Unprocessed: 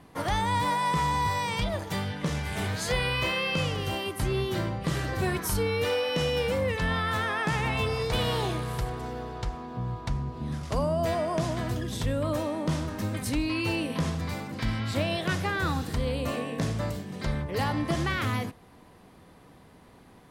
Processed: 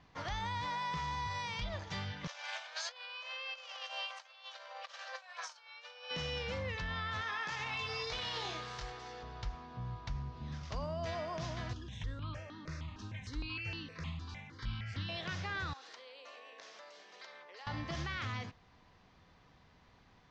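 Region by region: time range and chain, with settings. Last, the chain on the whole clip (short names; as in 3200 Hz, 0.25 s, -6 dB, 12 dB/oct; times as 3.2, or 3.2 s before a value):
2.27–6.11 notch 2000 Hz, Q 11 + negative-ratio compressor -33 dBFS, ratio -0.5 + brick-wall FIR high-pass 490 Hz
7.21–9.23 tone controls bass -11 dB, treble +4 dB + doubler 22 ms -4.5 dB
11.73–15.09 EQ curve 360 Hz 0 dB, 560 Hz -8 dB, 2600 Hz +2 dB, 5900 Hz -3 dB + step phaser 6.5 Hz 560–2400 Hz
15.73–17.67 HPF 430 Hz 24 dB/oct + compressor 4:1, threshold -41 dBFS
whole clip: steep low-pass 6400 Hz 48 dB/oct; bell 330 Hz -10.5 dB 2.5 oct; limiter -25 dBFS; gain -5 dB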